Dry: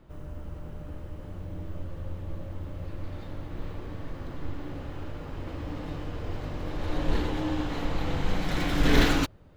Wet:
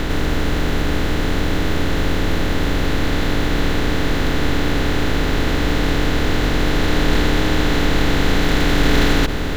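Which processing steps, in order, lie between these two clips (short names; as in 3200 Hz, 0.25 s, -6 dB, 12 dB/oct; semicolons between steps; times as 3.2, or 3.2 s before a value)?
per-bin compression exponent 0.2; gain +2 dB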